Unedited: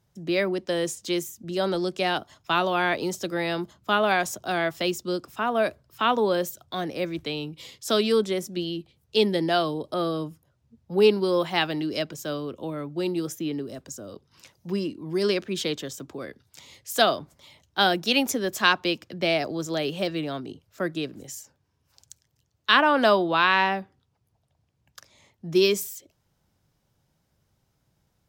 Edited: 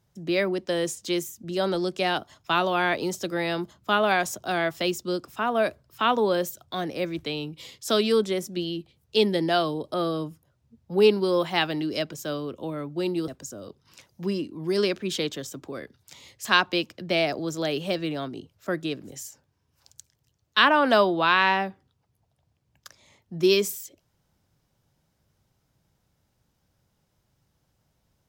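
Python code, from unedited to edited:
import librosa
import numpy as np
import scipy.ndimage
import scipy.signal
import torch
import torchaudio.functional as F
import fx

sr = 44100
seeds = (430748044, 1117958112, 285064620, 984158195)

y = fx.edit(x, sr, fx.cut(start_s=13.28, length_s=0.46),
    fx.cut(start_s=16.91, length_s=1.66), tone=tone)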